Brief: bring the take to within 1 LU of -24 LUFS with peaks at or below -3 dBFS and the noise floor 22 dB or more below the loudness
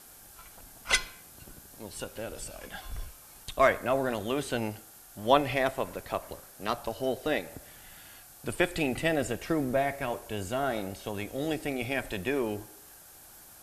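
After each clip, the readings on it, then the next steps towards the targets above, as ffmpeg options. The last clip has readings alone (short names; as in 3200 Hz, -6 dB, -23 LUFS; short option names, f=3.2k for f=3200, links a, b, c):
noise floor -52 dBFS; noise floor target -53 dBFS; loudness -31.0 LUFS; peak -6.5 dBFS; loudness target -24.0 LUFS
-> -af "afftdn=nr=6:nf=-52"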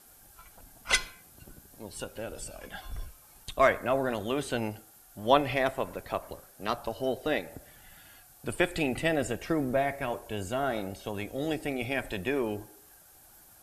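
noise floor -56 dBFS; loudness -31.0 LUFS; peak -6.5 dBFS; loudness target -24.0 LUFS
-> -af "volume=7dB,alimiter=limit=-3dB:level=0:latency=1"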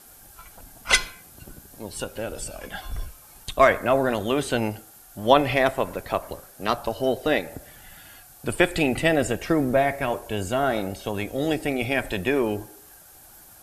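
loudness -24.0 LUFS; peak -3.0 dBFS; noise floor -49 dBFS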